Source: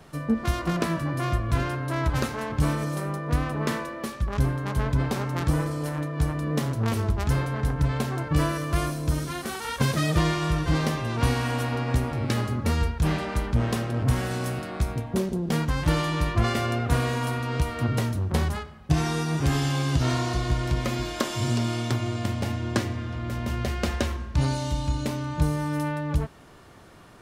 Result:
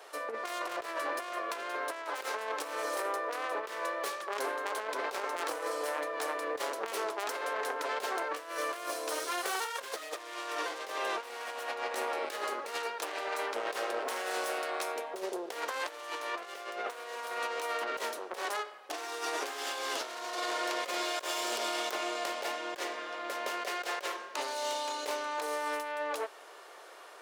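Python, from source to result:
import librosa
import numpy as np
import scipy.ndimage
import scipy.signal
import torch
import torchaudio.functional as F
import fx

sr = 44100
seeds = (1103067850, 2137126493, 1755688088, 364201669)

y = fx.self_delay(x, sr, depth_ms=0.24)
y = scipy.signal.sosfilt(scipy.signal.butter(6, 420.0, 'highpass', fs=sr, output='sos'), y)
y = fx.over_compress(y, sr, threshold_db=-35.0, ratio=-0.5)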